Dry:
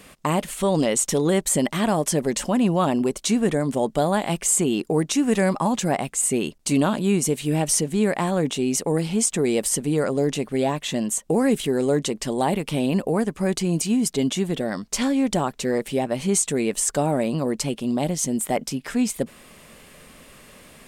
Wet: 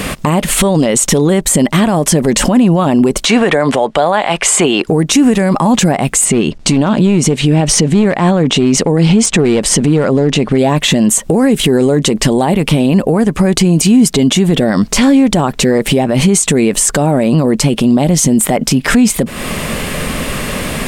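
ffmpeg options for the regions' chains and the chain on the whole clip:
ffmpeg -i in.wav -filter_complex "[0:a]asettb=1/sr,asplit=3[link_01][link_02][link_03];[link_01]atrim=end=3.254[link_04];[link_02]atrim=start=3.25:end=4.88,asetpts=PTS-STARTPTS,afade=type=in:duration=0.004:curve=qsin,afade=type=out:start_time=1.626:duration=0.004:curve=qsin,lowpass=frequency=11000:width=0.5412,lowpass=frequency=11000:width=1.3066,acrossover=split=500 4300:gain=0.141 1 0.224[link_05][link_06][link_07];[link_05][link_06][link_07]amix=inputs=3:normalize=0[link_08];[link_03]atrim=start=4.876[link_09];[link_04][link_08]acrossfade=duration=0.004:curve1=hsin:curve2=qsin[link_10];[link_10][link_09]acrossfade=duration=0.004:curve1=qsin:curve2=hsin,asettb=1/sr,asplit=3[link_11][link_12][link_13];[link_11]atrim=end=6.254[link_14];[link_12]atrim=start=6.25:end=10.58,asetpts=PTS-STARTPTS,afade=type=in:duration=0.004:curve=qsin,afade=type=out:start_time=4.326:duration=0.004:curve=qsin,lowpass=6000,aeval=exprs='clip(val(0),-1,0.112)':channel_layout=same[link_15];[link_13]atrim=start=10.576[link_16];[link_14][link_15]acrossfade=duration=0.004:curve1=hsin:curve2=qsin[link_17];[link_17][link_16]acrossfade=duration=0.004:curve1=qsin:curve2=hsin,bass=frequency=250:gain=4,treble=frequency=4000:gain=-3,acompressor=threshold=-30dB:ratio=6,alimiter=level_in=29dB:limit=-1dB:release=50:level=0:latency=1,volume=-1dB" out.wav

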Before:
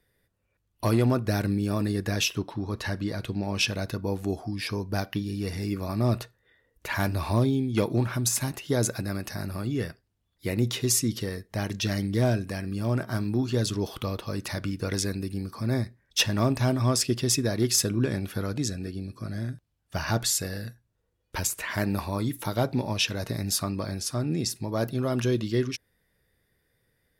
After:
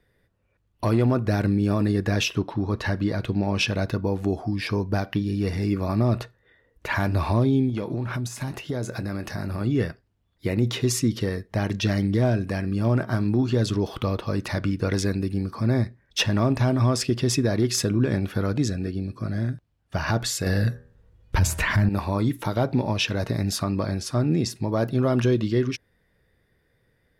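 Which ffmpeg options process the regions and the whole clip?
ffmpeg -i in.wav -filter_complex "[0:a]asettb=1/sr,asplit=3[link_01][link_02][link_03];[link_01]atrim=end=7.694[link_04];[link_02]atrim=start=7.69:end=9.61,asetpts=PTS-STARTPTS,afade=type=in:duration=0.004:curve=qsin,afade=type=out:start_time=1.916:duration=0.004:curve=qsin,asplit=2[link_05][link_06];[link_06]adelay=24,volume=-14dB[link_07];[link_05][link_07]amix=inputs=2:normalize=0,atrim=end_sample=84672,acompressor=threshold=-30dB:ratio=8:attack=3.2:release=140:knee=1:detection=peak[link_08];[link_03]atrim=start=9.606[link_09];[link_04][link_08]acrossfade=duration=0.004:curve1=hsin:curve2=qsin[link_10];[link_10][link_09]acrossfade=duration=0.004:curve1=qsin:curve2=hsin,asettb=1/sr,asplit=3[link_11][link_12][link_13];[link_11]atrim=end=20.464[link_14];[link_12]atrim=start=20.46:end=21.89,asetpts=PTS-STARTPTS,afade=type=in:duration=0.004:curve=qsin,afade=type=out:start_time=1.426:duration=0.004:curve=qsin,bandreject=frequency=80.29:width_type=h:width=4,bandreject=frequency=160.58:width_type=h:width=4,bandreject=frequency=240.87:width_type=h:width=4,bandreject=frequency=321.16:width_type=h:width=4,bandreject=frequency=401.45:width_type=h:width=4,bandreject=frequency=481.74:width_type=h:width=4,bandreject=frequency=562.03:width_type=h:width=4,bandreject=frequency=642.32:width_type=h:width=4,bandreject=frequency=722.61:width_type=h:width=4,bandreject=frequency=802.9:width_type=h:width=4,bandreject=frequency=883.19:width_type=h:width=4,bandreject=frequency=963.48:width_type=h:width=4,bandreject=frequency=1043.77:width_type=h:width=4,bandreject=frequency=1124.06:width_type=h:width=4,bandreject=frequency=1204.35:width_type=h:width=4,bandreject=frequency=1284.64:width_type=h:width=4,bandreject=frequency=1364.93:width_type=h:width=4,bandreject=frequency=1445.22:width_type=h:width=4,bandreject=frequency=1525.51:width_type=h:width=4,bandreject=frequency=1605.8:width_type=h:width=4,bandreject=frequency=1686.09:width_type=h:width=4,bandreject=frequency=1766.38:width_type=h:width=4,bandreject=frequency=1846.67:width_type=h:width=4,asubboost=boost=10.5:cutoff=190,acontrast=85[link_15];[link_13]atrim=start=21.886[link_16];[link_14][link_15]acrossfade=duration=0.004:curve1=hsin:curve2=qsin[link_17];[link_17][link_16]acrossfade=duration=0.004:curve1=qsin:curve2=hsin,lowpass=frequency=2500:poles=1,alimiter=limit=-19dB:level=0:latency=1:release=95,volume=6dB" out.wav

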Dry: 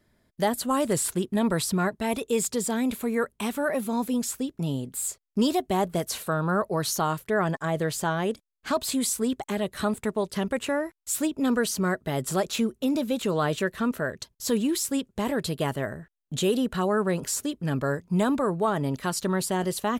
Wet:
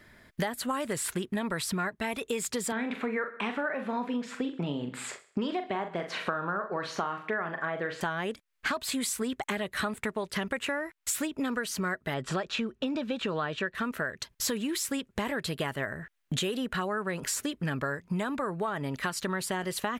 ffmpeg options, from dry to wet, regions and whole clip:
ffmpeg -i in.wav -filter_complex "[0:a]asettb=1/sr,asplit=3[link_01][link_02][link_03];[link_01]atrim=end=2.724[link_04];[link_02]atrim=start=2.72:end=8.01,asetpts=PTS-STARTPTS,afade=type=in:duration=0.004:curve=qsin,afade=type=out:start_time=5.286:duration=0.004:curve=qsin,highpass=190,lowpass=2700,asplit=2[link_05][link_06];[link_06]adelay=41,volume=-8dB[link_07];[link_05][link_07]amix=inputs=2:normalize=0,atrim=end_sample=233289,aecho=1:1:64|128|192|256:0.141|0.0664|0.0312|0.0147,atrim=end_sample=233289[link_08];[link_03]atrim=start=8.006[link_09];[link_04][link_08]acrossfade=duration=0.004:curve1=hsin:curve2=qsin[link_10];[link_10][link_09]acrossfade=duration=0.004:curve1=qsin:curve2=hsin,asettb=1/sr,asplit=3[link_11][link_12][link_13];[link_11]atrim=end=12.144[link_14];[link_12]atrim=start=12.14:end=13.75,asetpts=PTS-STARTPTS,afade=type=in:duration=0.004:curve=qsin,afade=type=out:start_time=1.606:duration=0.004:curve=qsin,lowpass=4300,bandreject=frequency=2100:width=9.8[link_15];[link_13]atrim=start=13.746[link_16];[link_14][link_15]acrossfade=duration=0.004:curve1=hsin:curve2=qsin[link_17];[link_17][link_16]acrossfade=duration=0.004:curve1=qsin:curve2=hsin,equalizer=frequency=1900:width_type=o:width=1.7:gain=10.5,acompressor=threshold=-36dB:ratio=12,volume=7.5dB" out.wav

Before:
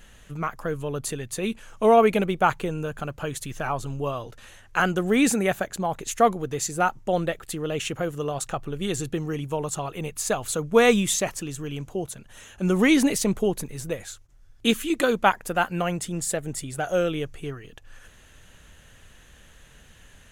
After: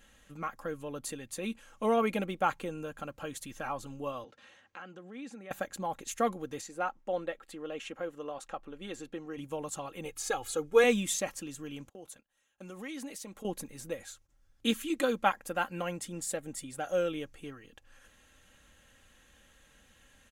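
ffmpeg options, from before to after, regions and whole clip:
ffmpeg -i in.wav -filter_complex "[0:a]asettb=1/sr,asplit=3[link_01][link_02][link_03];[link_01]atrim=end=4.244[link_04];[link_02]atrim=start=4.24:end=5.51,asetpts=PTS-STARTPTS,afade=type=in:duration=0.004:curve=qsin,afade=type=out:start_time=1.266:duration=0.004:curve=qsin,acompressor=threshold=-39dB:ratio=3:attack=3.2:release=140:knee=1:detection=peak,highpass=150,lowpass=4700[link_05];[link_03]atrim=start=5.506[link_06];[link_04][link_05]acrossfade=duration=0.004:curve1=hsin:curve2=qsin[link_07];[link_07][link_06]acrossfade=duration=0.004:curve1=qsin:curve2=hsin,asettb=1/sr,asplit=3[link_08][link_09][link_10];[link_08]atrim=end=6.614[link_11];[link_09]atrim=start=6.61:end=9.38,asetpts=PTS-STARTPTS,afade=type=in:duration=0.004:curve=qsin,afade=type=out:start_time=2.766:duration=0.004:curve=qsin,lowpass=frequency=2300:poles=1,equalizer=frequency=93:width_type=o:width=2:gain=-14.5[link_12];[link_10]atrim=start=9.376[link_13];[link_11][link_12]acrossfade=duration=0.004:curve1=hsin:curve2=qsin[link_14];[link_14][link_13]acrossfade=duration=0.004:curve1=qsin:curve2=hsin,asettb=1/sr,asplit=3[link_15][link_16][link_17];[link_15]atrim=end=10.054[link_18];[link_16]atrim=start=10.05:end=10.84,asetpts=PTS-STARTPTS,afade=type=in:duration=0.004:curve=qsin,afade=type=out:start_time=0.786:duration=0.004:curve=qsin,acrossover=split=6400[link_19][link_20];[link_20]acompressor=threshold=-33dB:ratio=4:attack=1:release=60[link_21];[link_19][link_21]amix=inputs=2:normalize=0,aecho=1:1:2.4:0.85,atrim=end_sample=34839[link_22];[link_17]atrim=start=10.836[link_23];[link_18][link_22]acrossfade=duration=0.004:curve1=hsin:curve2=qsin[link_24];[link_24][link_23]acrossfade=duration=0.004:curve1=qsin:curve2=hsin,asettb=1/sr,asplit=3[link_25][link_26][link_27];[link_25]atrim=end=11.894[link_28];[link_26]atrim=start=11.89:end=13.45,asetpts=PTS-STARTPTS,afade=type=in:duration=0.004:curve=qsin,afade=type=out:start_time=1.556:duration=0.004:curve=qsin,agate=range=-21dB:threshold=-42dB:ratio=16:release=100:detection=peak,lowshelf=frequency=250:gain=-9.5,acompressor=threshold=-35dB:ratio=3:attack=3.2:release=140:knee=1:detection=peak[link_29];[link_27]atrim=start=13.446[link_30];[link_28][link_29]acrossfade=duration=0.004:curve1=hsin:curve2=qsin[link_31];[link_31][link_30]acrossfade=duration=0.004:curve1=qsin:curve2=hsin,lowshelf=frequency=64:gain=-9.5,aecho=1:1:3.7:0.49,volume=-9dB" out.wav

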